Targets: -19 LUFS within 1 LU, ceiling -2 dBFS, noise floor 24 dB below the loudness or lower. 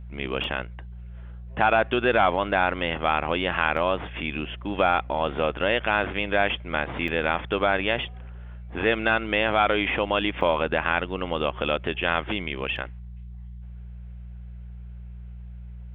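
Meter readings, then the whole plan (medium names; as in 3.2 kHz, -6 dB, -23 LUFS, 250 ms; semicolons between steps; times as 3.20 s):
dropouts 5; longest dropout 1.6 ms; hum 60 Hz; highest harmonic 180 Hz; hum level -37 dBFS; loudness -24.5 LUFS; peak level -5.0 dBFS; loudness target -19.0 LUFS
-> interpolate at 0.44/3.77/7.08/10.41/12.76 s, 1.6 ms; de-hum 60 Hz, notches 3; trim +5.5 dB; peak limiter -2 dBFS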